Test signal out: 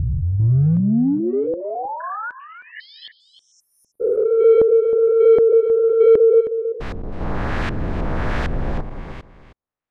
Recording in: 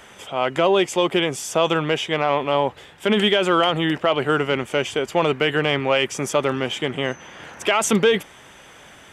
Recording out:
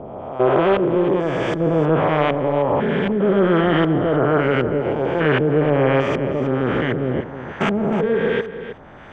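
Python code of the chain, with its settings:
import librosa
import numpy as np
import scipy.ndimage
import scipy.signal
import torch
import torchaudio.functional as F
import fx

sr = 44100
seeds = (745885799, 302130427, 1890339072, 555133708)

p1 = fx.spec_steps(x, sr, hold_ms=400)
p2 = fx.low_shelf(p1, sr, hz=71.0, db=5.0)
p3 = np.clip(p2, -10.0 ** (-26.0 / 20.0), 10.0 ** (-26.0 / 20.0))
p4 = p2 + F.gain(torch.from_numpy(p3), -7.0).numpy()
p5 = fx.filter_lfo_lowpass(p4, sr, shape='saw_up', hz=1.3, low_hz=400.0, high_hz=2600.0, q=0.78)
p6 = fx.dynamic_eq(p5, sr, hz=1700.0, q=4.0, threshold_db=-47.0, ratio=4.0, max_db=5)
p7 = fx.filter_lfo_notch(p6, sr, shape='sine', hz=7.4, low_hz=370.0, high_hz=3100.0, q=2.6)
p8 = p7 + fx.echo_single(p7, sr, ms=315, db=-12.0, dry=0)
y = F.gain(torch.from_numpy(p8), 6.0).numpy()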